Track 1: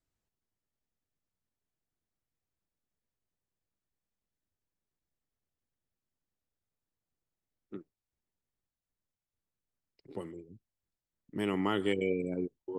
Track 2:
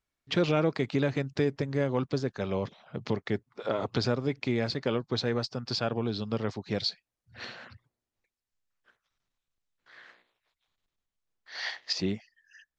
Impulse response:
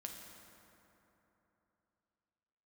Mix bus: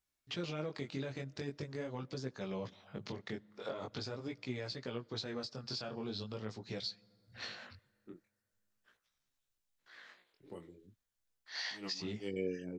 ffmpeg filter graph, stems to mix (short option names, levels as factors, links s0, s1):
-filter_complex "[0:a]acontrast=31,adelay=350,volume=0.299[s0];[1:a]highshelf=f=4200:g=10,alimiter=limit=0.0631:level=0:latency=1:release=375,volume=0.708,asplit=3[s1][s2][s3];[s2]volume=0.126[s4];[s3]apad=whole_len=579470[s5];[s0][s5]sidechaincompress=threshold=0.00141:ratio=8:attack=7.6:release=105[s6];[2:a]atrim=start_sample=2205[s7];[s4][s7]afir=irnorm=-1:irlink=0[s8];[s6][s1][s8]amix=inputs=3:normalize=0,flanger=delay=15.5:depth=7.5:speed=0.43"